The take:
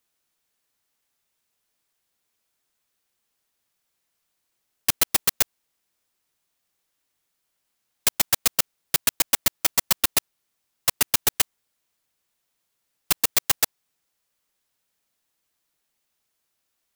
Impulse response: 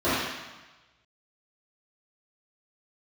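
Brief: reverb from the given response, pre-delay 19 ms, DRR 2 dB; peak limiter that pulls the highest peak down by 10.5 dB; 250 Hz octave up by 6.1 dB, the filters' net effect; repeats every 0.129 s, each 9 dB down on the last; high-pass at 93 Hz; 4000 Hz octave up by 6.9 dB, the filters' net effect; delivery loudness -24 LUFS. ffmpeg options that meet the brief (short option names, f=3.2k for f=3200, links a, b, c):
-filter_complex "[0:a]highpass=93,equalizer=f=250:t=o:g=8,equalizer=f=4k:t=o:g=8.5,alimiter=limit=-10.5dB:level=0:latency=1,aecho=1:1:129|258|387|516:0.355|0.124|0.0435|0.0152,asplit=2[a][b];[1:a]atrim=start_sample=2205,adelay=19[c];[b][c]afir=irnorm=-1:irlink=0,volume=-20dB[d];[a][d]amix=inputs=2:normalize=0,volume=2dB"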